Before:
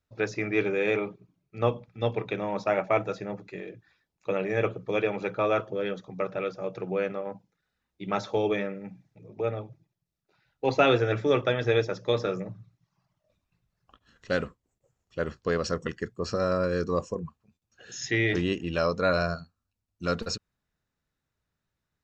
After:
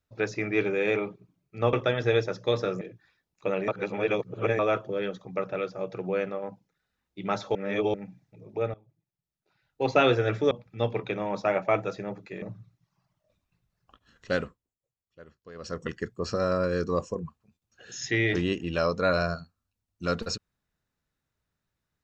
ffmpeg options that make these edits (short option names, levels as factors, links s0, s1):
-filter_complex "[0:a]asplit=12[s0][s1][s2][s3][s4][s5][s6][s7][s8][s9][s10][s11];[s0]atrim=end=1.732[s12];[s1]atrim=start=11.338:end=12.422[s13];[s2]atrim=start=3.638:end=4.512[s14];[s3]atrim=start=4.508:end=5.422,asetpts=PTS-STARTPTS,areverse[s15];[s4]atrim=start=5.418:end=8.382[s16];[s5]atrim=start=8.378:end=8.772,asetpts=PTS-STARTPTS,areverse[s17];[s6]atrim=start=8.768:end=9.57,asetpts=PTS-STARTPTS,afade=t=out:st=0.798:d=0.004:c=hsin:silence=0.0749894[s18];[s7]atrim=start=9.57:end=11.342,asetpts=PTS-STARTPTS,afade=t=in:d=1.24:silence=0.0749894[s19];[s8]atrim=start=1.728:end=3.642[s20];[s9]atrim=start=12.418:end=14.74,asetpts=PTS-STARTPTS,afade=t=out:st=1.932:d=0.39:silence=0.105925[s21];[s10]atrim=start=14.74:end=15.54,asetpts=PTS-STARTPTS,volume=0.106[s22];[s11]atrim=start=15.54,asetpts=PTS-STARTPTS,afade=t=in:d=0.39:silence=0.105925[s23];[s12][s13]acrossfade=d=0.004:c1=hsin:c2=hsin[s24];[s24][s14]acrossfade=d=0.004:c1=hsin:c2=hsin[s25];[s25][s15]acrossfade=d=0.004:c1=hsin:c2=hsin[s26];[s26][s16]acrossfade=d=0.004:c1=hsin:c2=hsin[s27];[s27][s17]acrossfade=d=0.004:c1=hsin:c2=hsin[s28];[s18][s19]concat=n=2:v=0:a=1[s29];[s28][s29]acrossfade=d=0.004:c1=hsin:c2=hsin[s30];[s30][s20]acrossfade=d=0.004:c1=hsin:c2=hsin[s31];[s21][s22][s23]concat=n=3:v=0:a=1[s32];[s31][s32]acrossfade=d=0.004:c1=hsin:c2=hsin"